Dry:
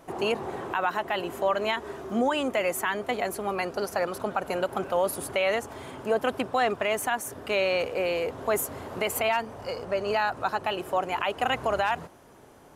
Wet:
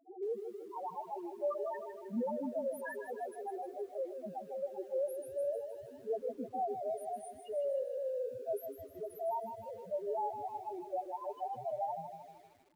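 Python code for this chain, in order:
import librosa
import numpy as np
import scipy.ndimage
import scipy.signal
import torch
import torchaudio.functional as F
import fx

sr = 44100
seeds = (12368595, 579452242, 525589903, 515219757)

y = fx.spec_topn(x, sr, count=1)
y = fx.echo_crushed(y, sr, ms=155, feedback_pct=55, bits=10, wet_db=-8)
y = F.gain(torch.from_numpy(y), -3.5).numpy()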